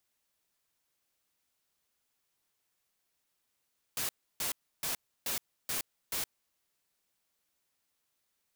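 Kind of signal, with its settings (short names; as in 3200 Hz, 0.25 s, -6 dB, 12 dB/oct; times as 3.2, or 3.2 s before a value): noise bursts white, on 0.12 s, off 0.31 s, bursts 6, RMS -34 dBFS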